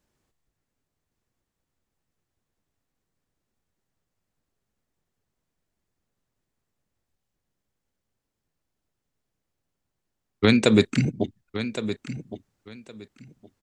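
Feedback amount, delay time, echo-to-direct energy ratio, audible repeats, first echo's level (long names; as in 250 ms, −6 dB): 19%, 1,115 ms, −11.5 dB, 2, −11.5 dB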